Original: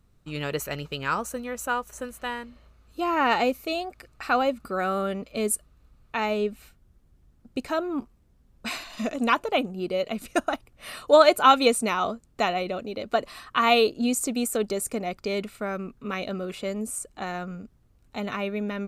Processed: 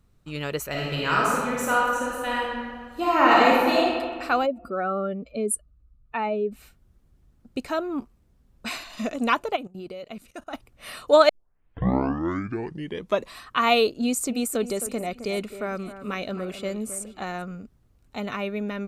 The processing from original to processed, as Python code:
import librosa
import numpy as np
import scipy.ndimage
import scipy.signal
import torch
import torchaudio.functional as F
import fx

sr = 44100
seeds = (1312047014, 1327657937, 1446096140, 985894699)

y = fx.reverb_throw(x, sr, start_s=0.7, length_s=3.13, rt60_s=1.8, drr_db=-5.5)
y = fx.spec_expand(y, sr, power=1.6, at=(4.45, 6.51), fade=0.02)
y = fx.level_steps(y, sr, step_db=18, at=(9.55, 10.53), fade=0.02)
y = fx.echo_alternate(y, sr, ms=264, hz=2000.0, feedback_pct=52, wet_db=-11.5, at=(14.03, 17.42))
y = fx.edit(y, sr, fx.tape_start(start_s=11.29, length_s=2.09), tone=tone)